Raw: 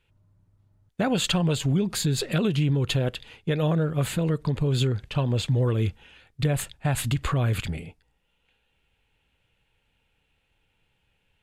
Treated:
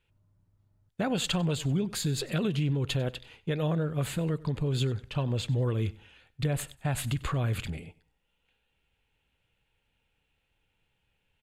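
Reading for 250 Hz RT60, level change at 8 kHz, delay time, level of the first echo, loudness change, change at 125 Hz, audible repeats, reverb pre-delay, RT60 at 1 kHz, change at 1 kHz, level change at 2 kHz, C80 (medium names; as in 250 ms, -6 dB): no reverb, -5.0 dB, 96 ms, -21.0 dB, -5.0 dB, -5.0 dB, 2, no reverb, no reverb, -5.0 dB, -5.0 dB, no reverb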